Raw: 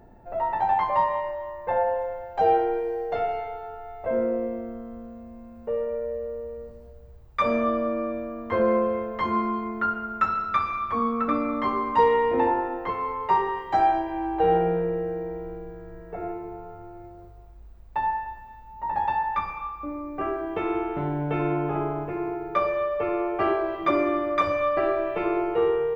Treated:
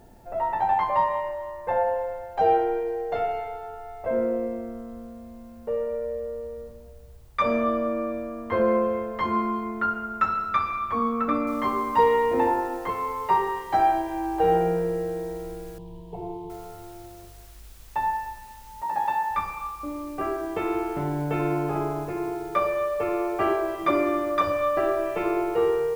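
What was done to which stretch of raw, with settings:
11.47 noise floor step -67 dB -54 dB
15.78–16.5 EQ curve 100 Hz 0 dB, 150 Hz +12 dB, 260 Hz -12 dB, 380 Hz +2 dB, 600 Hz -10 dB, 970 Hz +6 dB, 1400 Hz -29 dB, 3100 Hz -3 dB, 5700 Hz -17 dB
18.82–19.31 Bessel high-pass 210 Hz
24.31–25.03 notch 2200 Hz, Q 6

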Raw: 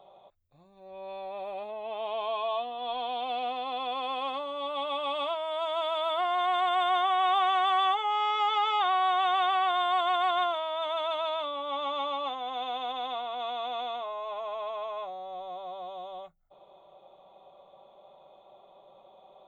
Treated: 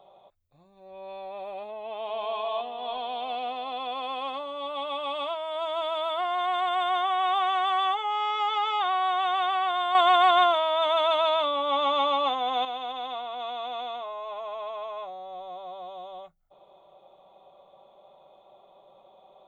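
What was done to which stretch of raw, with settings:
1.71–2.24 echo throw 0.37 s, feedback 60%, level -5 dB
5.55–6.06 low shelf 230 Hz +8.5 dB
9.95–12.65 gain +7.5 dB

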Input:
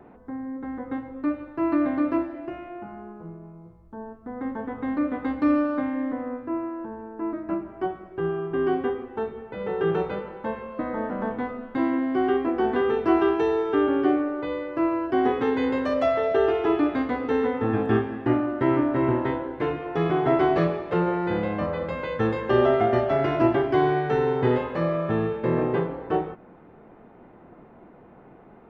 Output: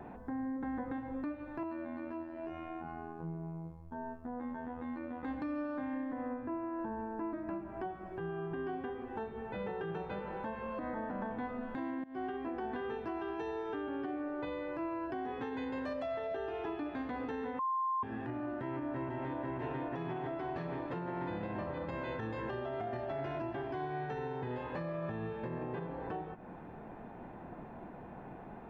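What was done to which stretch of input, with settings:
1.63–5.23 robotiser 82 Hz
6.34–6.79 air absorption 150 m
12.04–12.99 fade in equal-power, from -21.5 dB
17.59–18.03 bleep 1050 Hz -17.5 dBFS
18.57–19.39 echo throw 0.49 s, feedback 80%, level -2.5 dB
whole clip: compressor 6:1, threshold -36 dBFS; comb 1.2 ms, depth 32%; limiter -32 dBFS; gain +1.5 dB

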